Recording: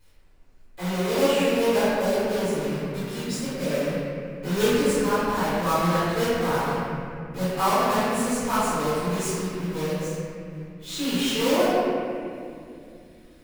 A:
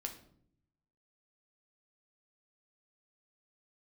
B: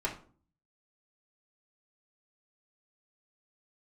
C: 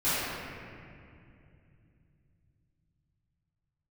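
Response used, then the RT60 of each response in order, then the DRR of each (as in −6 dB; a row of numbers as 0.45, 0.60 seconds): C; 0.65, 0.45, 2.5 seconds; 3.5, −5.5, −15.5 decibels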